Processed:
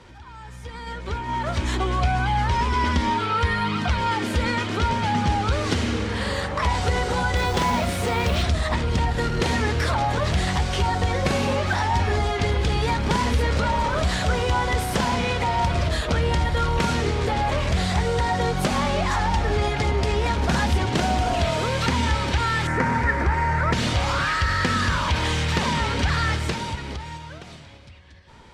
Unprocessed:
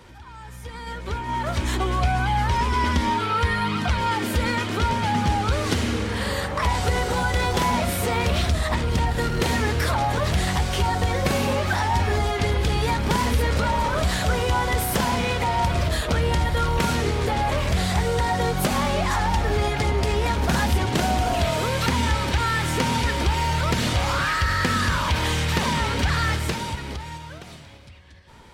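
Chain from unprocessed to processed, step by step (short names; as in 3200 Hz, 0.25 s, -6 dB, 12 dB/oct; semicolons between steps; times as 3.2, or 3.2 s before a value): LPF 7800 Hz 12 dB/oct; 7.36–8.43 modulation noise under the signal 28 dB; 22.67–23.73 resonant high shelf 2400 Hz -9.5 dB, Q 3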